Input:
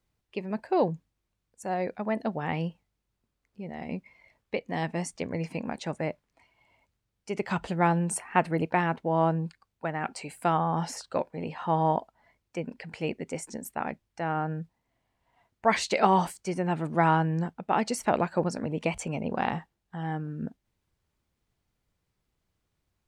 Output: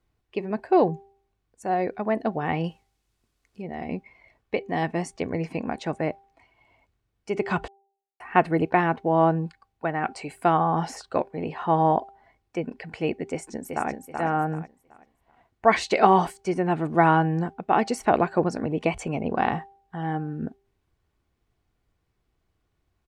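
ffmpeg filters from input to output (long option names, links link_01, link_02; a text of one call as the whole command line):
ffmpeg -i in.wav -filter_complex "[0:a]asettb=1/sr,asplit=3[link_01][link_02][link_03];[link_01]atrim=end=2.644[link_04];[link_02]atrim=start=2.64:end=3.62,asetpts=PTS-STARTPTS,afade=type=in:duration=0.004:curve=qsin,afade=type=out:start_time=0.976:duration=0.004:curve=qsin,equalizer=frequency=8500:width_type=o:width=2.8:gain=13[link_05];[link_03]atrim=start=3.616[link_06];[link_04][link_05]acrossfade=duration=0.004:curve1=hsin:curve2=qsin[link_07];[link_07][link_06]acrossfade=duration=0.004:curve1=qsin:curve2=hsin,asplit=2[link_08][link_09];[link_09]afade=type=in:start_time=13.3:duration=0.01,afade=type=out:start_time=13.9:duration=0.01,aecho=0:1:380|760|1140|1520:0.562341|0.168702|0.0506107|0.0151832[link_10];[link_08][link_10]amix=inputs=2:normalize=0,asplit=3[link_11][link_12][link_13];[link_11]atrim=end=7.68,asetpts=PTS-STARTPTS,afade=type=out:start_time=7.676:duration=0.004:curve=hsin[link_14];[link_12]atrim=start=7.68:end=8.2,asetpts=PTS-STARTPTS,volume=0[link_15];[link_13]atrim=start=8.2,asetpts=PTS-STARTPTS,afade=type=in:duration=0.004:curve=hsin[link_16];[link_14][link_15][link_16]concat=n=3:v=0:a=1,highshelf=frequency=3800:gain=-9.5,aecho=1:1:2.7:0.3,bandreject=frequency=394.9:width_type=h:width=4,bandreject=frequency=789.8:width_type=h:width=4,volume=5dB" out.wav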